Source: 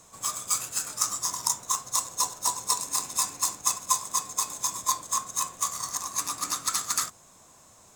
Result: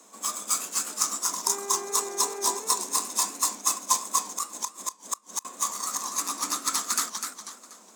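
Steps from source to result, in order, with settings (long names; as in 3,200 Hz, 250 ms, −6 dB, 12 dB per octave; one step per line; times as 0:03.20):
Butterworth high-pass 200 Hz 96 dB per octave
low-shelf EQ 290 Hz +10 dB
0:01.46–0:02.58: hum with harmonics 400 Hz, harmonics 6, −38 dBFS −8 dB per octave
0:04.21–0:05.45: gate with flip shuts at −14 dBFS, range −33 dB
feedback echo with a swinging delay time 244 ms, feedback 40%, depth 199 cents, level −6.5 dB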